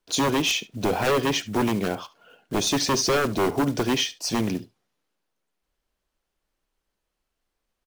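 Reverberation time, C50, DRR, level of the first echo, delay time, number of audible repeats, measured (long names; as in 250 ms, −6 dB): no reverb audible, no reverb audible, no reverb audible, −19.5 dB, 71 ms, 1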